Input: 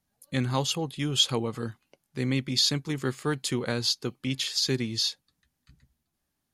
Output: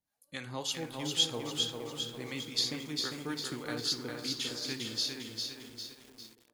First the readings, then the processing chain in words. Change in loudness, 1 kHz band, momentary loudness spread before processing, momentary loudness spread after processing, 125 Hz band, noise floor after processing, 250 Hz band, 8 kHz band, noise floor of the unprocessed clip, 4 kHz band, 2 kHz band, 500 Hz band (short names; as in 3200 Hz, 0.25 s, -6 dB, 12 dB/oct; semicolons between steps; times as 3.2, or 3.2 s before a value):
-6.5 dB, -7.5 dB, 10 LU, 14 LU, -14.0 dB, -69 dBFS, -9.0 dB, -5.0 dB, -81 dBFS, -4.5 dB, -5.5 dB, -8.0 dB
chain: low shelf 260 Hz -10 dB; harmonic tremolo 3.7 Hz, depth 70%, crossover 620 Hz; on a send: tape echo 0.464 s, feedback 56%, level -5 dB, low-pass 1400 Hz; on the sum: FDN reverb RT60 0.68 s, low-frequency decay 0.8×, high-frequency decay 0.65×, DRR 9.5 dB; lo-fi delay 0.401 s, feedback 55%, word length 8-bit, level -4 dB; gain -5 dB